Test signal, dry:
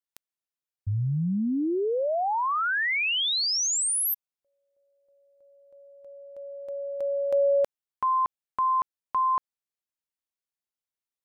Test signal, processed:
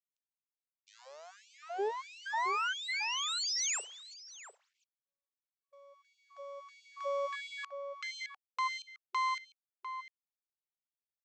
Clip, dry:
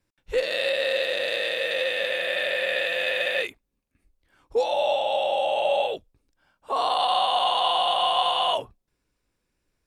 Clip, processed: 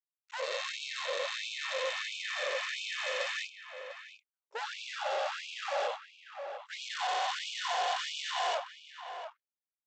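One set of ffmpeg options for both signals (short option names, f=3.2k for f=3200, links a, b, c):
-filter_complex "[0:a]agate=range=-36dB:threshold=-56dB:ratio=16:release=31:detection=peak,equalizer=f=3.1k:w=0.77:g=-5,acrossover=split=220[a][b];[b]asoftclip=type=hard:threshold=-24dB[c];[a][c]amix=inputs=2:normalize=0,acrusher=bits=7:mode=log:mix=0:aa=0.000001,aresample=16000,aeval=exprs='max(val(0),0)':c=same,aresample=44100,asplit=2[d][e];[e]adelay=699.7,volume=-8dB,highshelf=f=4k:g=-15.7[f];[d][f]amix=inputs=2:normalize=0,afftfilt=real='re*gte(b*sr/1024,370*pow(2300/370,0.5+0.5*sin(2*PI*1.5*pts/sr)))':imag='im*gte(b*sr/1024,370*pow(2300/370,0.5+0.5*sin(2*PI*1.5*pts/sr)))':win_size=1024:overlap=0.75"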